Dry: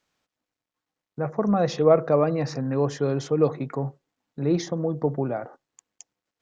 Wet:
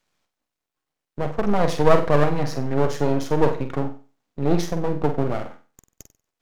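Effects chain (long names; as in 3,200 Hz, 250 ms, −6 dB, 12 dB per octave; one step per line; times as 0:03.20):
half-wave rectification
flutter between parallel walls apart 8.1 metres, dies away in 0.35 s
level +5.5 dB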